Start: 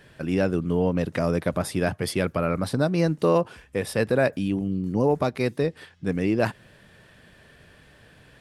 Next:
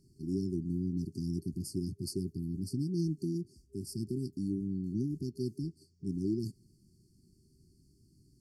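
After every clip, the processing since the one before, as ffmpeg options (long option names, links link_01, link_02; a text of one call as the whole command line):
ffmpeg -i in.wav -af "afftfilt=real='re*(1-between(b*sr/4096,400,4300))':imag='im*(1-between(b*sr/4096,400,4300))':win_size=4096:overlap=0.75,volume=-8.5dB" out.wav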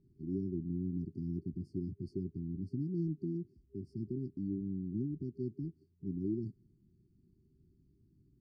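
ffmpeg -i in.wav -af "lowpass=1400,volume=-3dB" out.wav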